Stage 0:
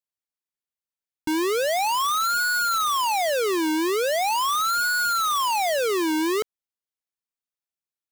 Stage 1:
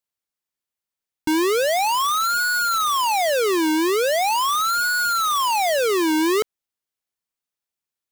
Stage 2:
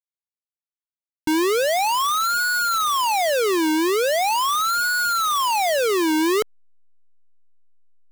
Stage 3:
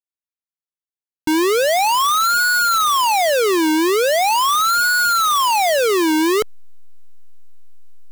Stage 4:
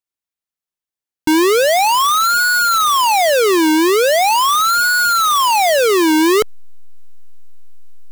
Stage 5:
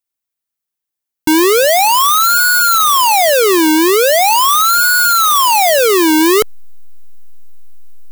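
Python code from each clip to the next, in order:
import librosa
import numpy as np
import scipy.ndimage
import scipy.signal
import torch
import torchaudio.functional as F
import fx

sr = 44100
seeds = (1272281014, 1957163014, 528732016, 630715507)

y1 = fx.rider(x, sr, range_db=10, speed_s=0.5)
y1 = y1 * librosa.db_to_amplitude(3.0)
y2 = fx.backlash(y1, sr, play_db=-44.5)
y3 = fx.leveller(y2, sr, passes=5)
y3 = y3 * librosa.db_to_amplitude(3.0)
y4 = fx.rider(y3, sr, range_db=10, speed_s=0.5)
y4 = y4 * librosa.db_to_amplitude(3.0)
y5 = fx.high_shelf(y4, sr, hz=10000.0, db=9.5)
y5 = y5 * librosa.db_to_amplitude(2.0)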